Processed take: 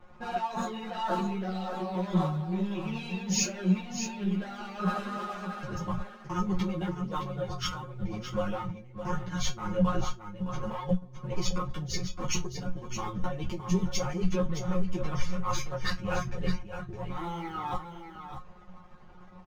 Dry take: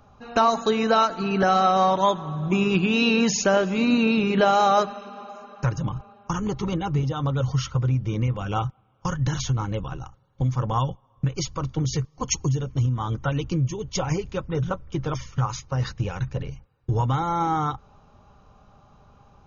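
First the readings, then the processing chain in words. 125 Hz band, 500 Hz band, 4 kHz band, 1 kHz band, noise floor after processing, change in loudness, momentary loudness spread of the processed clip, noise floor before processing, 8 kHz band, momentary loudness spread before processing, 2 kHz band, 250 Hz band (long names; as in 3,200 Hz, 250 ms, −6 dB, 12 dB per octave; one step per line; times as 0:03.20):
−9.5 dB, −10.0 dB, −7.0 dB, −11.0 dB, −49 dBFS, −9.0 dB, 9 LU, −59 dBFS, can't be measured, 11 LU, −9.5 dB, −6.0 dB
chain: high-shelf EQ 3,400 Hz −12 dB
in parallel at +1.5 dB: brickwall limiter −15.5 dBFS, peak gain reduction 7 dB
on the sum: leveller curve on the samples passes 2
compressor whose output falls as the input rises −19 dBFS, ratio −1
tuned comb filter 180 Hz, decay 0.16 s, harmonics all, mix 100%
on a send: single-tap delay 615 ms −9 dB
on the sum: string-ensemble chorus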